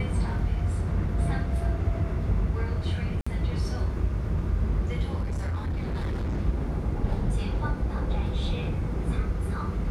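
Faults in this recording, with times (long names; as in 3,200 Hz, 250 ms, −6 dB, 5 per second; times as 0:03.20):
0:03.21–0:03.27: drop-out 55 ms
0:05.20–0:06.38: clipping −25.5 dBFS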